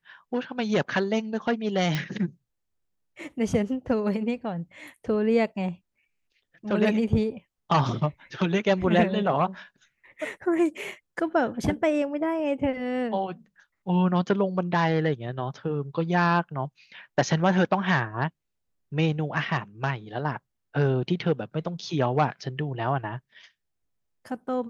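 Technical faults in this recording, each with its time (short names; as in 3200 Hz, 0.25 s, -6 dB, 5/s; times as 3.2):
1.95 pop -13 dBFS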